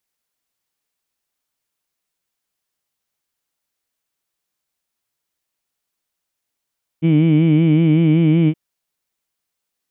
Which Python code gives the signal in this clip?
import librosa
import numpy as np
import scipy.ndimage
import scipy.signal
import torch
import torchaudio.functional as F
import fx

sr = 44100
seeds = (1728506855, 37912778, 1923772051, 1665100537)

y = fx.vowel(sr, seeds[0], length_s=1.52, word='heed', hz=157.0, glide_st=0.5, vibrato_hz=5.3, vibrato_st=0.9)